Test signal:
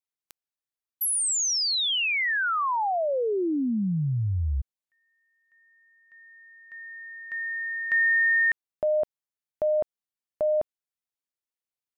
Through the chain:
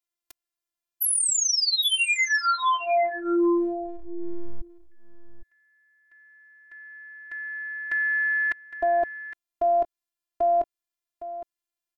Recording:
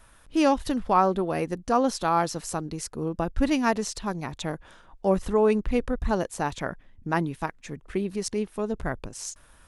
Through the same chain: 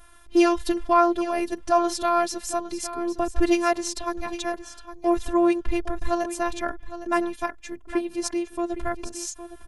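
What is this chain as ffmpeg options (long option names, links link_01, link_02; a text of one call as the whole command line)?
ffmpeg -i in.wav -filter_complex "[0:a]afftfilt=real='hypot(re,im)*cos(PI*b)':imag='0':win_size=512:overlap=0.75,asplit=2[link_01][link_02];[link_02]aecho=0:1:811:0.224[link_03];[link_01][link_03]amix=inputs=2:normalize=0,volume=6dB" out.wav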